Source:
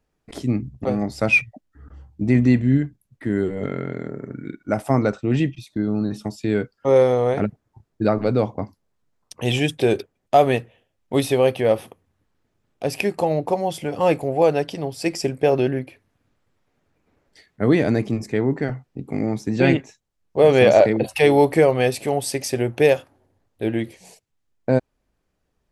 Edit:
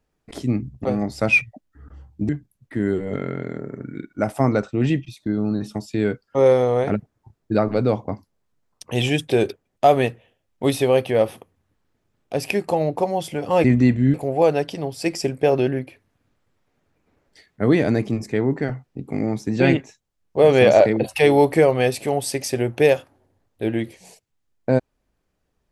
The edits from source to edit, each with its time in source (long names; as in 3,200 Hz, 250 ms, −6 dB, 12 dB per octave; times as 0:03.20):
0:02.29–0:02.79: move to 0:14.14